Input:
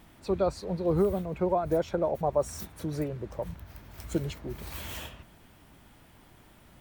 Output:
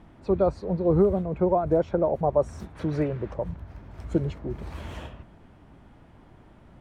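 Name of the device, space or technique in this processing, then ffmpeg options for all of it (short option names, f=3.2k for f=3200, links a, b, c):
through cloth: -filter_complex "[0:a]asettb=1/sr,asplit=3[a][b][c];[a]atrim=end=2.754[d];[b]atrim=start=2.75:end=3.34,asetpts=PTS-STARTPTS,afade=t=in:d=0.004:c=qsin,afade=t=out:st=0.586:d=0.004:c=qsin,equalizer=f=2.4k:w=0.48:g=10[e];[c]atrim=start=3.336[f];[d][e]acrossfade=d=0.004:c1=hsin:c2=qsin[g];[g][f]acrossfade=d=0.004:c1=qsin:c2=hsin,lowpass=8.7k,highshelf=f=2.2k:g=-17.5,volume=5.5dB"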